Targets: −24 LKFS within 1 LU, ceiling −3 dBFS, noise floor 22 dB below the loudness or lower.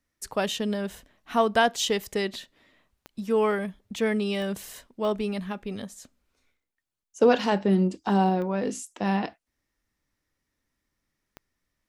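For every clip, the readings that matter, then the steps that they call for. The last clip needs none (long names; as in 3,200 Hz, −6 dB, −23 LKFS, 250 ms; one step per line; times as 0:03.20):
number of clicks 5; integrated loudness −26.5 LKFS; sample peak −8.0 dBFS; target loudness −24.0 LKFS
→ click removal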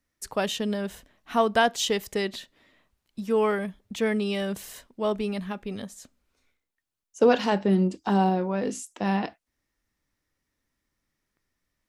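number of clicks 0; integrated loudness −26.5 LKFS; sample peak −8.0 dBFS; target loudness −24.0 LKFS
→ level +2.5 dB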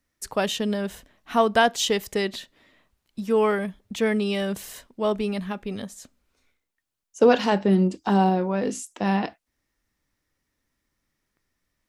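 integrated loudness −24.0 LKFS; sample peak −5.5 dBFS; background noise floor −80 dBFS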